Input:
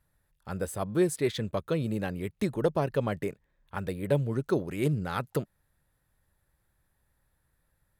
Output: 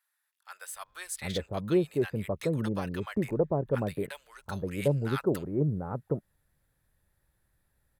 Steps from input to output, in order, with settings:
multiband delay without the direct sound highs, lows 750 ms, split 1,000 Hz

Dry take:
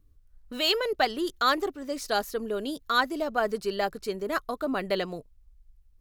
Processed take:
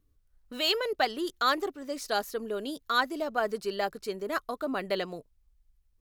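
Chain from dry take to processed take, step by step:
low-shelf EQ 120 Hz −8.5 dB
level −2 dB

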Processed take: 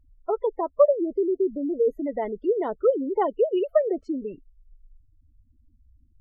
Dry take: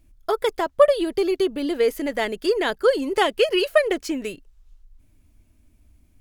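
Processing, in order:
gate on every frequency bin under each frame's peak −15 dB strong
Savitzky-Golay smoothing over 65 samples
level −2 dB

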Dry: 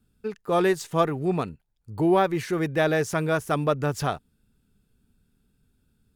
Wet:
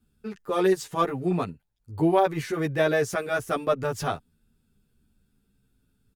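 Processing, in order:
0:03.02–0:03.71: notch filter 940 Hz, Q 7.3
barber-pole flanger 10.2 ms −0.43 Hz
level +2 dB

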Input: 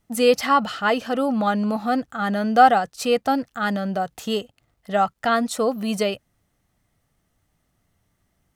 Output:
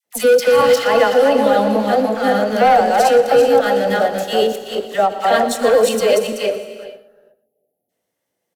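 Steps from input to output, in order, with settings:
feedback delay that plays each chunk backwards 190 ms, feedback 44%, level −0.5 dB
high-pass filter 310 Hz 12 dB per octave
gain on a spectral selection 0:06.49–0:07.89, 850–9,800 Hz −28 dB
thirty-one-band graphic EQ 500 Hz +11 dB, 1,250 Hz −9 dB, 12,500 Hz +3 dB
leveller curve on the samples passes 2
brickwall limiter −4 dBFS, peak gain reduction 5.5 dB
all-pass dispersion lows, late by 59 ms, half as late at 970 Hz
on a send: single-tap delay 119 ms −16.5 dB
on the sum: reverb whose tail is shaped and stops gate 490 ms flat, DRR 11 dB
every ending faded ahead of time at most 350 dB per second
level −2.5 dB

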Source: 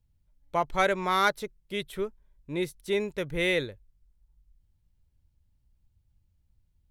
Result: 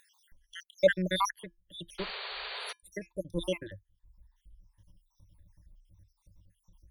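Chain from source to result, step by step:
time-frequency cells dropped at random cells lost 75%
EQ curve with evenly spaced ripples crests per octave 1.2, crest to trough 16 dB
upward compression, threshold −47 dBFS
0:01.98–0:02.73: sound drawn into the spectrogram noise 380–4,700 Hz −36 dBFS
0:01.33–0:03.70: tuned comb filter 340 Hz, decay 0.17 s, harmonics odd, mix 40%

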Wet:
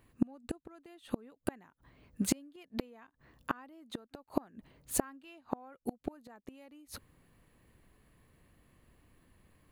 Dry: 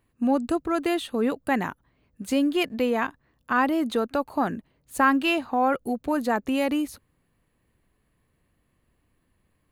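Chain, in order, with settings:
gate with flip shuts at −20 dBFS, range −35 dB
level +4.5 dB

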